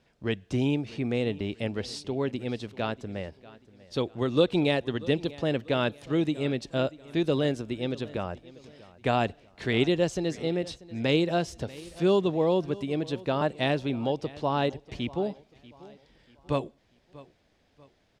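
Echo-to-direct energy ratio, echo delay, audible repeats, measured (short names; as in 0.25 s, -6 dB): -19.5 dB, 0.639 s, 2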